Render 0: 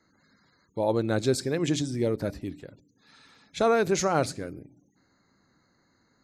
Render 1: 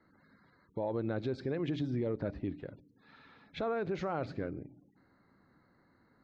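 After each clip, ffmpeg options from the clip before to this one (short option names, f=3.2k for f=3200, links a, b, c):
-filter_complex "[0:a]lowpass=f=3.8k:w=0.5412,lowpass=f=3.8k:w=1.3066,acrossover=split=2000[a][b];[a]acontrast=76[c];[c][b]amix=inputs=2:normalize=0,alimiter=limit=-19.5dB:level=0:latency=1:release=203,volume=-6.5dB"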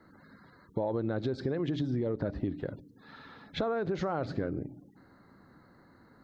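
-af "equalizer=f=2.4k:t=o:w=0.4:g=-8,acompressor=threshold=-37dB:ratio=6,volume=9dB"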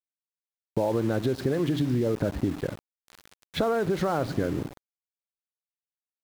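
-af "aeval=exprs='val(0)*gte(abs(val(0)),0.0075)':c=same,volume=6dB"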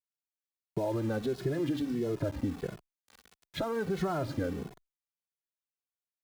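-filter_complex "[0:a]asplit=2[a][b];[b]adelay=2.3,afreqshift=-1.5[c];[a][c]amix=inputs=2:normalize=1,volume=-3dB"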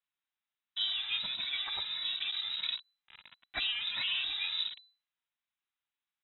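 -af "lowpass=f=3.4k:t=q:w=0.5098,lowpass=f=3.4k:t=q:w=0.6013,lowpass=f=3.4k:t=q:w=0.9,lowpass=f=3.4k:t=q:w=2.563,afreqshift=-4000,afftfilt=real='re*lt(hypot(re,im),0.0891)':imag='im*lt(hypot(re,im),0.0891)':win_size=1024:overlap=0.75,equalizer=f=490:t=o:w=0.8:g=-13.5,volume=8dB"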